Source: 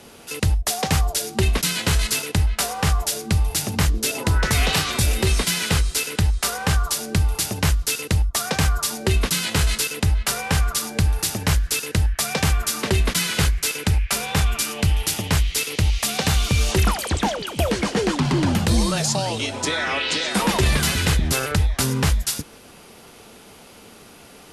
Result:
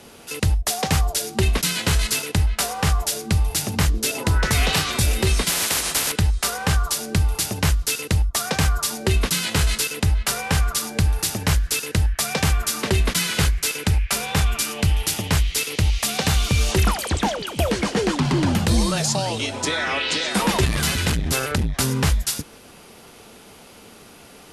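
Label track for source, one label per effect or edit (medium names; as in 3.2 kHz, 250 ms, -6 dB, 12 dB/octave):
5.490000	6.120000	spectrum-flattening compressor 10:1
20.650000	21.760000	transformer saturation saturates under 220 Hz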